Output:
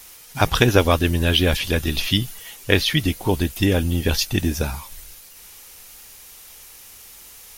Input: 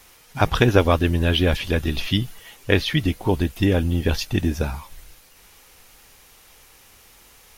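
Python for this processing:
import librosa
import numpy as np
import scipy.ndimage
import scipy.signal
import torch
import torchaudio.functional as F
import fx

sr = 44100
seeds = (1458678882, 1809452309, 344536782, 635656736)

y = fx.high_shelf(x, sr, hz=3900.0, db=11.0)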